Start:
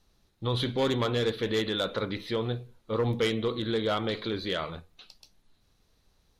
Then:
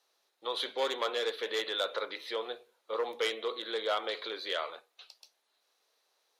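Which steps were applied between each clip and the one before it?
high-pass 470 Hz 24 dB/octave; trim -1.5 dB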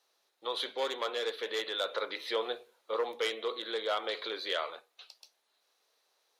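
gain riding within 4 dB 0.5 s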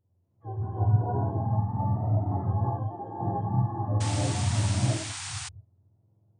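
spectrum inverted on a logarithmic axis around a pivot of 620 Hz; gated-style reverb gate 380 ms rising, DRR -8 dB; painted sound noise, 4.00–5.49 s, 700–9600 Hz -32 dBFS; trim -5.5 dB

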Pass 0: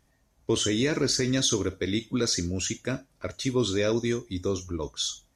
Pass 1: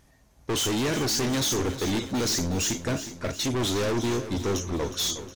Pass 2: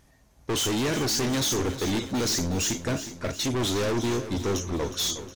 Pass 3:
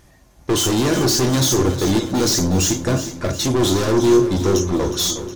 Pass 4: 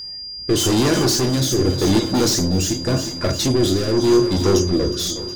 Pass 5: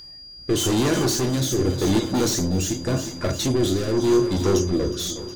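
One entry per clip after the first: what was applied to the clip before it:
overload inside the chain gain 32 dB; on a send: feedback delay 363 ms, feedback 58%, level -12 dB; on the sum: trim +7.5 dB
no audible change
dynamic bell 2.3 kHz, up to -6 dB, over -46 dBFS, Q 1.3; on a send at -7 dB: reverberation RT60 0.40 s, pre-delay 3 ms; on the sum: trim +8 dB
rotary cabinet horn 0.85 Hz; whistle 4.8 kHz -31 dBFS; trim +1.5 dB
band-stop 5 kHz, Q 6.1; trim -3.5 dB

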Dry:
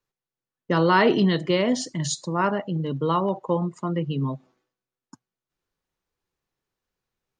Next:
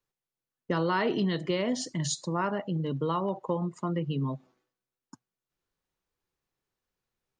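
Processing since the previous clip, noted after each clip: compression 2.5:1, threshold -24 dBFS, peak gain reduction 7.5 dB; trim -2.5 dB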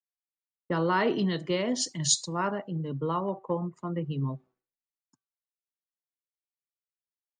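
de-hum 384.5 Hz, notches 4; three bands expanded up and down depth 100%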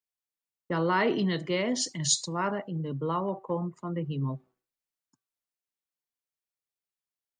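dynamic bell 2.1 kHz, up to +5 dB, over -53 dBFS, Q 6; transient shaper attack -2 dB, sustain +2 dB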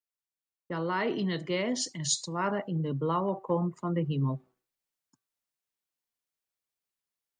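gain riding 0.5 s; trim -1 dB

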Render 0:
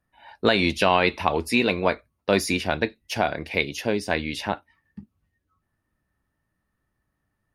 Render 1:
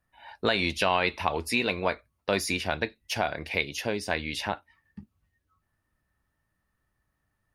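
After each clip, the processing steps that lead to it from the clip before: peaking EQ 260 Hz -5 dB 2.1 oct; in parallel at +1.5 dB: compression, threshold -30 dBFS, peak gain reduction 14 dB; on the sum: trim -6 dB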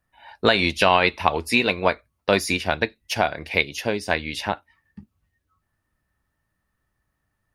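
upward expansion 1.5:1, over -35 dBFS; trim +8.5 dB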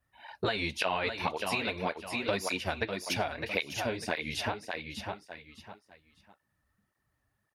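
feedback delay 602 ms, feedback 26%, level -9 dB; compression 3:1, threshold -27 dBFS, peak gain reduction 12 dB; cancelling through-zero flanger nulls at 1.8 Hz, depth 6.5 ms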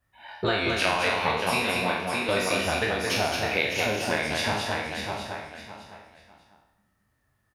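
spectral sustain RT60 0.81 s; on a send: loudspeakers at several distances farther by 13 m -12 dB, 76 m -4 dB; on the sum: trim +2 dB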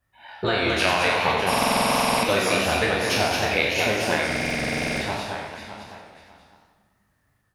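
level rider gain up to 3 dB; buffer glitch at 1.49/4.27 s, samples 2048, times 15; modulated delay 95 ms, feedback 56%, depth 205 cents, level -8 dB

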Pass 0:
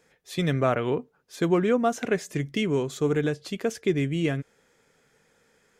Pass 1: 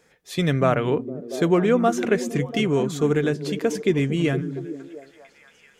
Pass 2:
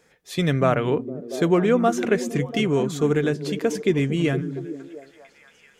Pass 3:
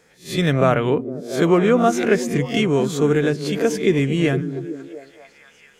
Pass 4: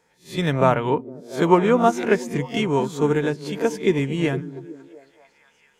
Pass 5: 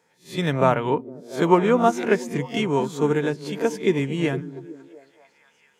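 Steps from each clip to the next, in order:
repeats whose band climbs or falls 230 ms, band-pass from 190 Hz, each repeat 0.7 oct, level -6 dB; trim +3.5 dB
no audible change
reverse spectral sustain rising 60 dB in 0.31 s; trim +2.5 dB
peaking EQ 920 Hz +12.5 dB 0.23 oct; upward expansion 1.5:1, over -28 dBFS
high-pass 100 Hz; trim -1 dB

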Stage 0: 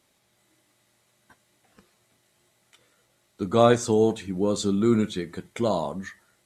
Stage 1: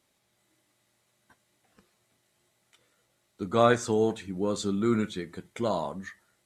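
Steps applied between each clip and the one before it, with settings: dynamic bell 1.6 kHz, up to +7 dB, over -40 dBFS, Q 1.1; trim -5 dB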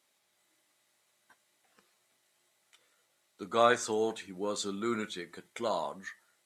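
high-pass 680 Hz 6 dB/octave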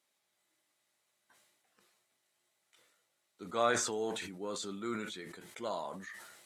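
decay stretcher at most 44 dB/s; trim -6 dB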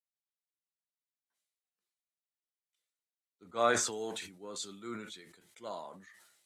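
three bands expanded up and down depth 70%; trim -4 dB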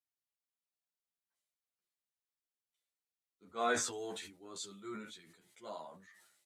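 endless flanger 11 ms +1.4 Hz; trim -1 dB

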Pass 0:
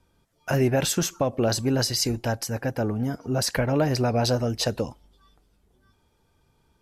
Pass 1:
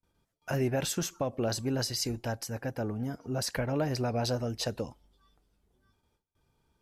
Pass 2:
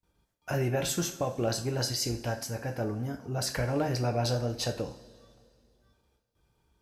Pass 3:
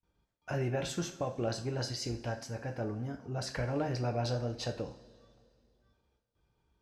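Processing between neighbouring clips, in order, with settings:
gate with hold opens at -56 dBFS; trim -7.5 dB
two-slope reverb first 0.37 s, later 2.3 s, from -19 dB, DRR 3.5 dB
distance through air 75 m; trim -4 dB

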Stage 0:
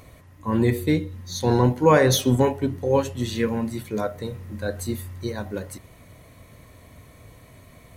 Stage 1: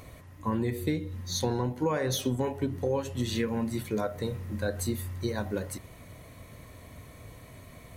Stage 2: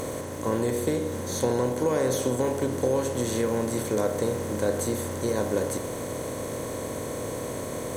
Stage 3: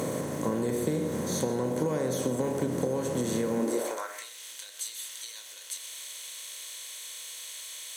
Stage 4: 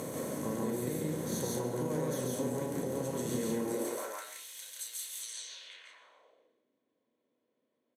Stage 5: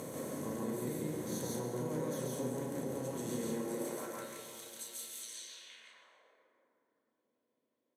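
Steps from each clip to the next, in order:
compression 10:1, threshold -25 dBFS, peak gain reduction 14.5 dB
spectral levelling over time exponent 0.4; graphic EQ 500/4000/8000 Hz +7/-7/+7 dB; crackle 410 per s -35 dBFS; trim -4.5 dB
compression, threshold -27 dBFS, peak gain reduction 7.5 dB; high-pass sweep 160 Hz -> 3.2 kHz, 3.52–4.29 s; on a send at -13 dB: reverberation RT60 0.35 s, pre-delay 80 ms
low-pass sweep 13 kHz -> 240 Hz, 5.04–6.55 s; on a send: loudspeakers at several distances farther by 48 m -2 dB, 59 m -3 dB; on the sum: trim -8.5 dB
plate-style reverb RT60 3 s, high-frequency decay 0.35×, pre-delay 95 ms, DRR 7 dB; trim -4.5 dB

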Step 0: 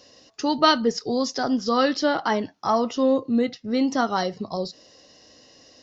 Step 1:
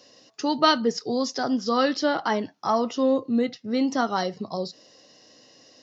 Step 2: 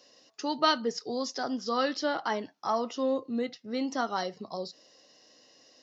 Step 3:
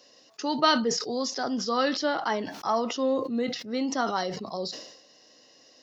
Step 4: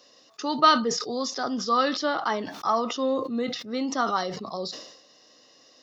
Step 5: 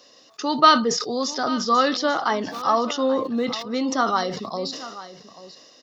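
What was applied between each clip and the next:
high-pass 110 Hz 24 dB/octave; trim -1.5 dB
bass shelf 180 Hz -11 dB; trim -5 dB
decay stretcher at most 65 dB/s; trim +2.5 dB
small resonant body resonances 1.2/3.6 kHz, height 9 dB, ringing for 20 ms
delay 837 ms -15.5 dB; trim +4 dB

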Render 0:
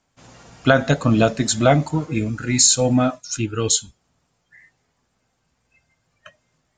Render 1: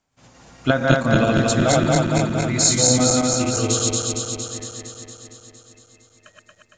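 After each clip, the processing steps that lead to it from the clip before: backward echo that repeats 115 ms, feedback 82%, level 0 dB; trim -5 dB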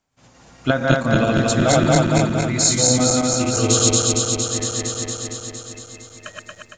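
level rider gain up to 14 dB; trim -1 dB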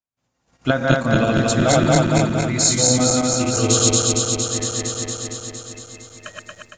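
gate -44 dBFS, range -23 dB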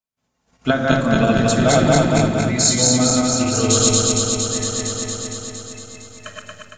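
simulated room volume 2200 m³, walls furnished, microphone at 1.5 m

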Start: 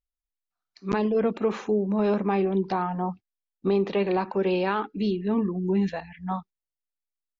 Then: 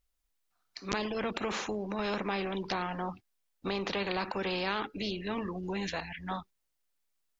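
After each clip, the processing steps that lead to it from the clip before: spectrum-flattening compressor 2:1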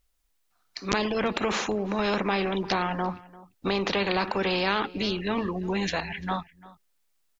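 echo from a far wall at 59 m, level -20 dB; trim +7 dB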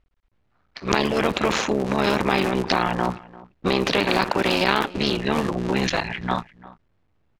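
cycle switcher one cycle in 3, muted; level-controlled noise filter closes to 2.3 kHz, open at -23 dBFS; trim +7 dB

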